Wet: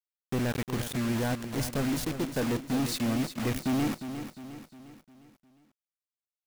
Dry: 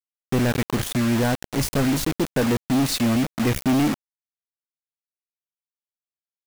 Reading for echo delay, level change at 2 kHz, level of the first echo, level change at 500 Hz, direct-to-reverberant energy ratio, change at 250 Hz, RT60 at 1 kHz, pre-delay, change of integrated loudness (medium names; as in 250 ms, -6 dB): 355 ms, -8.0 dB, -10.0 dB, -8.0 dB, no reverb, -8.0 dB, no reverb, no reverb, -8.5 dB